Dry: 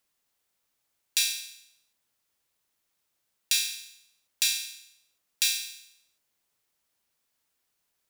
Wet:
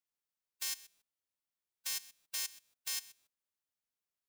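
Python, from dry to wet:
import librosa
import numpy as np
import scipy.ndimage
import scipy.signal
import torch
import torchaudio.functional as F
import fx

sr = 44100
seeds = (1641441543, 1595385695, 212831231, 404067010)

y = fx.envelope_flatten(x, sr, power=0.3)
y = fx.level_steps(y, sr, step_db=19)
y = fx.stretch_vocoder(y, sr, factor=0.53)
y = y * 10.0 ** (2.0 / 20.0)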